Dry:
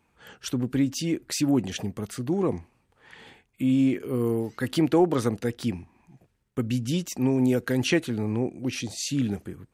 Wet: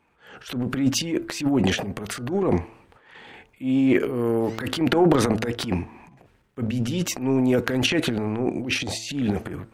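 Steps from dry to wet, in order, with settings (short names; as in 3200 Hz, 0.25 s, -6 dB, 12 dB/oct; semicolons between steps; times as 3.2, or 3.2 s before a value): tone controls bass -6 dB, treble -10 dB; transient shaper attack -10 dB, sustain +12 dB; de-hum 111.7 Hz, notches 14; gain +5 dB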